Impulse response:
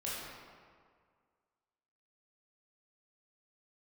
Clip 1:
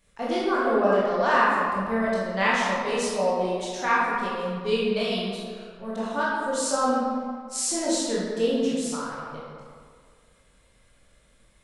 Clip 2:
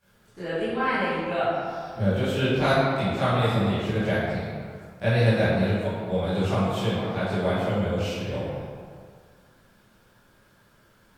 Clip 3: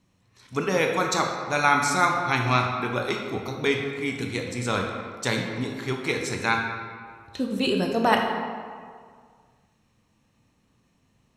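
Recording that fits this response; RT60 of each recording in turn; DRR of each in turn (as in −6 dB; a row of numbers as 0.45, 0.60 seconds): 1; 1.9, 1.9, 1.9 seconds; −8.0, −16.0, 1.5 decibels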